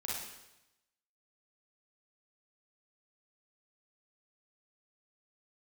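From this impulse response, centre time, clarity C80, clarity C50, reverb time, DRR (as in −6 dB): 76 ms, 3.0 dB, −1.5 dB, 0.90 s, −5.5 dB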